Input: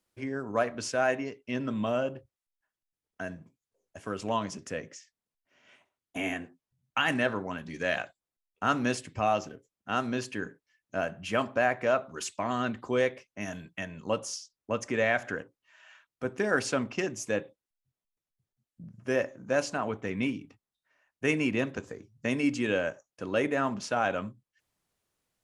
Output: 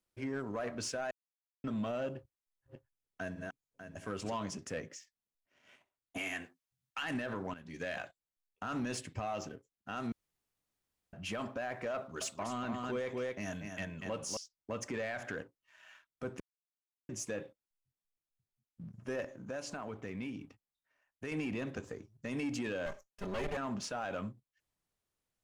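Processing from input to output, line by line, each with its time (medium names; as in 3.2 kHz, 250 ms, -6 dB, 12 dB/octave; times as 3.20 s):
1.11–1.64 s: mute
2.16–4.34 s: backward echo that repeats 298 ms, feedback 43%, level -4 dB
6.18–7.03 s: tilt shelf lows -7 dB, about 850 Hz
7.54–7.94 s: fade in, from -14 dB
10.12–11.13 s: room tone
11.97–14.37 s: delay 240 ms -7 dB
16.40–17.09 s: mute
19.24–21.32 s: compression 3:1, threshold -37 dBFS
22.86–23.57 s: comb filter that takes the minimum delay 5 ms
whole clip: bass shelf 62 Hz +7.5 dB; peak limiter -23.5 dBFS; waveshaping leveller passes 1; trim -6 dB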